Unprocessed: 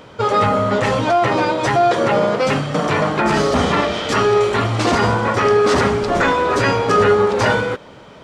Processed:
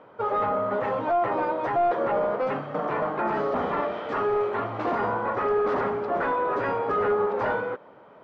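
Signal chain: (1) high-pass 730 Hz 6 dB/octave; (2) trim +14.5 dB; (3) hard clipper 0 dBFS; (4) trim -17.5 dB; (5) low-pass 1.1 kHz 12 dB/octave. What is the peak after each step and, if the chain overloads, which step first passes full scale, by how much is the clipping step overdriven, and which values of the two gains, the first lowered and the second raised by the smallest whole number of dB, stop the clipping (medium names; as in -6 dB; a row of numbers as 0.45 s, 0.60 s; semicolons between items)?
-5.5 dBFS, +9.0 dBFS, 0.0 dBFS, -17.5 dBFS, -17.0 dBFS; step 2, 9.0 dB; step 2 +5.5 dB, step 4 -8.5 dB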